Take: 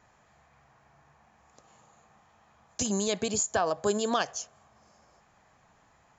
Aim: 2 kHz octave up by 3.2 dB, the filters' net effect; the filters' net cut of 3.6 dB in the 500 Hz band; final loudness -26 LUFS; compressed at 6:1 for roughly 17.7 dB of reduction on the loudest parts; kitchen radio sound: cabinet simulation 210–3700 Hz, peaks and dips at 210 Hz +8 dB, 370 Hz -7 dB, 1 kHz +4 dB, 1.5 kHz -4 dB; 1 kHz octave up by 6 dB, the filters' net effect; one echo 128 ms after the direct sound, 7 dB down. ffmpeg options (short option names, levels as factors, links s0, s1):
-af "equalizer=f=500:t=o:g=-5.5,equalizer=f=1000:t=o:g=7,equalizer=f=2000:t=o:g=5,acompressor=threshold=0.0112:ratio=6,highpass=210,equalizer=f=210:t=q:w=4:g=8,equalizer=f=370:t=q:w=4:g=-7,equalizer=f=1000:t=q:w=4:g=4,equalizer=f=1500:t=q:w=4:g=-4,lowpass=f=3700:w=0.5412,lowpass=f=3700:w=1.3066,aecho=1:1:128:0.447,volume=10"